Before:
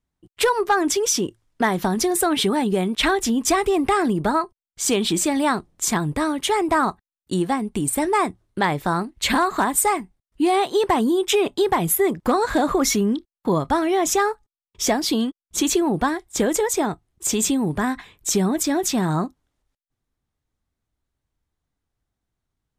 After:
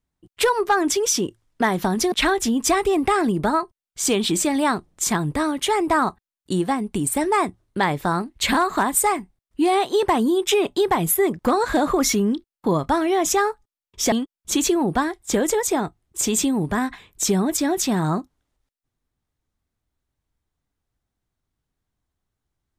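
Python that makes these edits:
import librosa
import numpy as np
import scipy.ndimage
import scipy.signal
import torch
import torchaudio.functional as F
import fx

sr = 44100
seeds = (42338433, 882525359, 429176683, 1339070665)

y = fx.edit(x, sr, fx.cut(start_s=2.12, length_s=0.81),
    fx.cut(start_s=14.93, length_s=0.25), tone=tone)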